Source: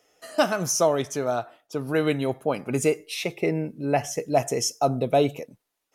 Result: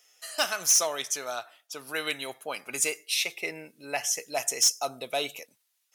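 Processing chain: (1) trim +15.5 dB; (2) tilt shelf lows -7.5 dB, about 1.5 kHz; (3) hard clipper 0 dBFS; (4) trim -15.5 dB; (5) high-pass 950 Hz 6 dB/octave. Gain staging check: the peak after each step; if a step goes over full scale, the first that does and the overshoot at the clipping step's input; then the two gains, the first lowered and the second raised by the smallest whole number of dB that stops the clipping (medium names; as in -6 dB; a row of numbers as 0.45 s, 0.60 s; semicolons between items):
+7.0 dBFS, +9.5 dBFS, 0.0 dBFS, -15.5 dBFS, -12.0 dBFS; step 1, 9.5 dB; step 1 +5.5 dB, step 4 -5.5 dB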